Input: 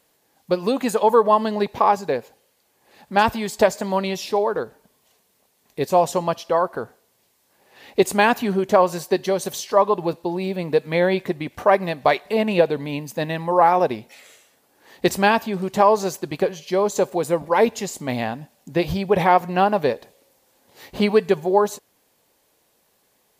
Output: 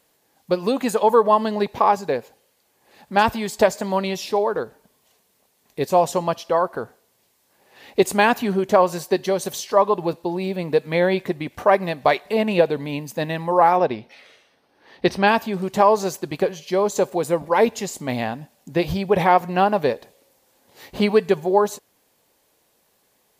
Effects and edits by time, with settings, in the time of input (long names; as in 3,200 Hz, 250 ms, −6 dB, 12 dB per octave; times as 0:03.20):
0:13.77–0:15.28: Savitzky-Golay smoothing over 15 samples